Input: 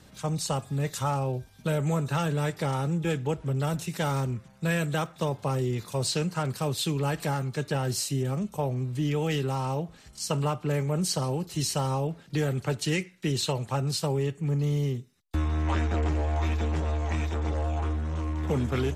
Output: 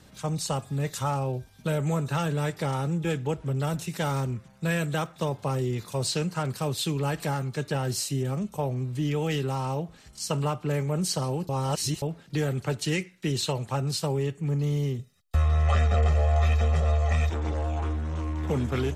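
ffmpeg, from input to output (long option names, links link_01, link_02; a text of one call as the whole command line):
ffmpeg -i in.wav -filter_complex "[0:a]asettb=1/sr,asplit=3[link_01][link_02][link_03];[link_01]atrim=end=14.994[link_04];[link_02]atrim=start=14.99:end=17.3,asetpts=PTS-STARTPTS,afade=type=in:duration=0.004:curve=qsin,afade=type=out:start_time=2.306:duration=0.004:curve=qsin,aecho=1:1:1.6:0.99,atrim=end_sample=101871[link_05];[link_03]atrim=start=17.296[link_06];[link_04][link_05]acrossfade=duration=0.004:curve1=hsin:curve2=qsin[link_07];[link_07][link_06]acrossfade=duration=0.004:curve1=qsin:curve2=hsin,asplit=3[link_08][link_09][link_10];[link_08]atrim=end=11.492[link_11];[link_09]atrim=start=11.488:end=12.022,asetpts=PTS-STARTPTS,areverse[link_12];[link_10]atrim=start=12.018[link_13];[link_11][link_12]acrossfade=duration=0.004:curve1=hsin:curve2=hsin[link_14];[link_14][link_13]acrossfade=duration=0.004:curve1=hsin:curve2=hsin" out.wav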